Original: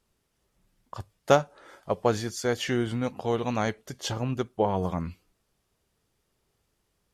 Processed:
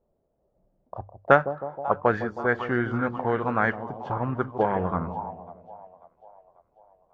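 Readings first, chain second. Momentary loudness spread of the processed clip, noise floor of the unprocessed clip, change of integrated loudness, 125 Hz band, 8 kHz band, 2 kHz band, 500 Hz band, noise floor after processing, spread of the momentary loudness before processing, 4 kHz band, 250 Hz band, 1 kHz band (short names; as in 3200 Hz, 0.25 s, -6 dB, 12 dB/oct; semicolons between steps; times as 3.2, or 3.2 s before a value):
21 LU, -76 dBFS, +2.0 dB, 0.0 dB, under -25 dB, +8.5 dB, +1.5 dB, -73 dBFS, 18 LU, -13.0 dB, +1.0 dB, +5.5 dB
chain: notches 50/100 Hz; on a send: split-band echo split 830 Hz, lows 0.158 s, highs 0.542 s, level -11 dB; on the sum: envelope low-pass 620–1700 Hz up, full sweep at -21.5 dBFS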